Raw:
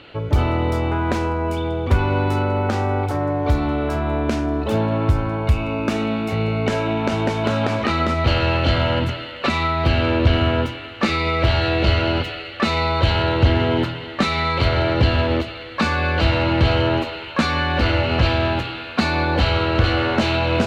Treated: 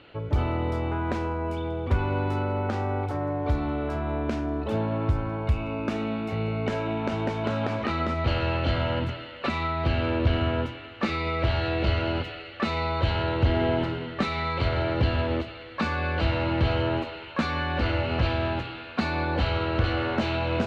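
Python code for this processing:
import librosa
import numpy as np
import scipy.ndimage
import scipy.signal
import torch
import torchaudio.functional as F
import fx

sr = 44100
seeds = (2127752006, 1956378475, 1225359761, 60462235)

y = fx.reverb_throw(x, sr, start_s=13.46, length_s=0.68, rt60_s=1.3, drr_db=4.5)
y = fx.lowpass(y, sr, hz=3300.0, slope=6)
y = y * librosa.db_to_amplitude(-7.0)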